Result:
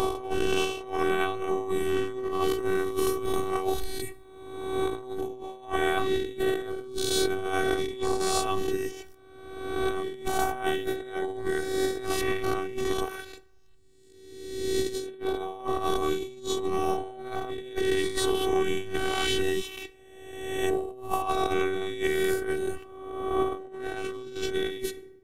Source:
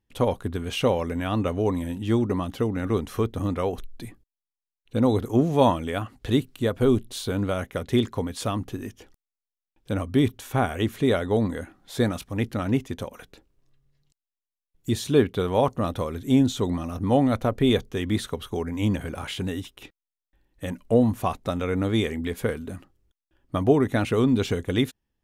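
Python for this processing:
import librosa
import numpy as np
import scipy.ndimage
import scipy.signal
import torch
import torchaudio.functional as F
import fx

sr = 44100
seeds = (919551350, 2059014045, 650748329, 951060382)

y = fx.spec_swells(x, sr, rise_s=1.28)
y = fx.high_shelf(y, sr, hz=7300.0, db=7.5, at=(2.48, 4.96))
y = fx.rev_plate(y, sr, seeds[0], rt60_s=0.81, hf_ratio=0.55, predelay_ms=0, drr_db=14.5)
y = fx.over_compress(y, sr, threshold_db=-25.0, ratio=-0.5)
y = fx.robotise(y, sr, hz=381.0)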